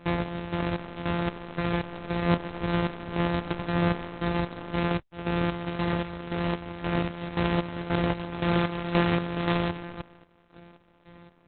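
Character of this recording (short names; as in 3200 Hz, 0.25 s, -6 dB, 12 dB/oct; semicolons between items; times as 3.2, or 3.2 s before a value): a buzz of ramps at a fixed pitch in blocks of 256 samples; chopped level 1.9 Hz, depth 65%, duty 45%; Opus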